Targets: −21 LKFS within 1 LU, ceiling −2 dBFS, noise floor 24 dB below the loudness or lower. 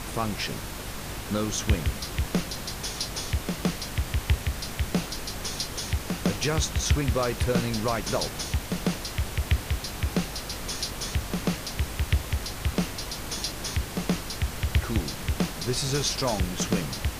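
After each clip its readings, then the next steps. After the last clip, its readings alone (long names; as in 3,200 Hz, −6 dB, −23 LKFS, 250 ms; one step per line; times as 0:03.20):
mains hum 50 Hz; hum harmonics up to 250 Hz; level of the hum −41 dBFS; background noise floor −37 dBFS; target noise floor −53 dBFS; integrated loudness −29.0 LKFS; sample peak −10.5 dBFS; target loudness −21.0 LKFS
→ mains-hum notches 50/100/150/200/250 Hz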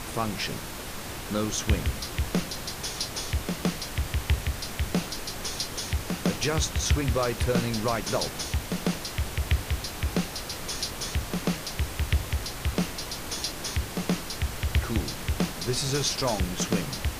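mains hum none found; background noise floor −37 dBFS; target noise floor −54 dBFS
→ noise reduction from a noise print 17 dB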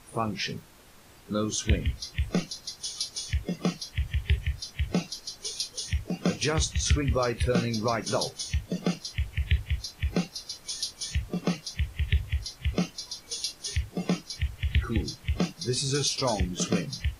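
background noise floor −53 dBFS; target noise floor −54 dBFS
→ noise reduction from a noise print 6 dB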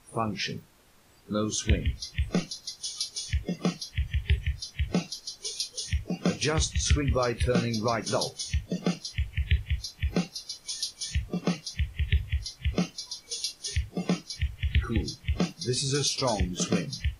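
background noise floor −56 dBFS; integrated loudness −30.0 LKFS; sample peak −11.5 dBFS; target loudness −21.0 LKFS
→ level +9 dB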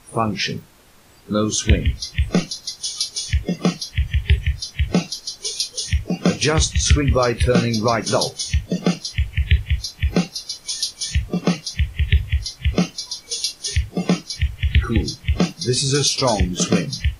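integrated loudness −21.0 LKFS; sample peak −2.5 dBFS; background noise floor −47 dBFS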